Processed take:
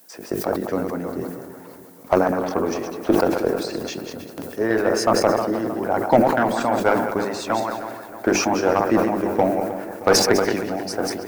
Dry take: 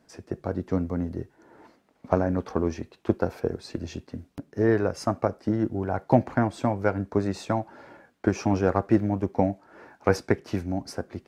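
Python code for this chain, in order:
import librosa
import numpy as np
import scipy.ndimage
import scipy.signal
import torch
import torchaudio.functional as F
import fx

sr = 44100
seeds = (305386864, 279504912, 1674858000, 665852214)

p1 = fx.reverse_delay_fb(x, sr, ms=100, feedback_pct=49, wet_db=-5.0)
p2 = scipy.signal.sosfilt(scipy.signal.bessel(2, 310.0, 'highpass', norm='mag', fs=sr, output='sos'), p1)
p3 = fx.hum_notches(p2, sr, base_hz=50, count=9)
p4 = fx.hpss(p3, sr, part='harmonic', gain_db=-8)
p5 = fx.dmg_noise_colour(p4, sr, seeds[0], colour='violet', level_db=-60.0)
p6 = 10.0 ** (-19.0 / 20.0) * (np.abs((p5 / 10.0 ** (-19.0 / 20.0) + 3.0) % 4.0 - 2.0) - 1.0)
p7 = p5 + (p6 * librosa.db_to_amplitude(-10.0))
p8 = fx.cheby_harmonics(p7, sr, harmonics=(4,), levels_db=(-25,), full_scale_db=-6.5)
p9 = p8 + fx.echo_filtered(p8, sr, ms=312, feedback_pct=57, hz=3600.0, wet_db=-12.5, dry=0)
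p10 = fx.sustainer(p9, sr, db_per_s=48.0)
y = p10 * librosa.db_to_amplitude(6.0)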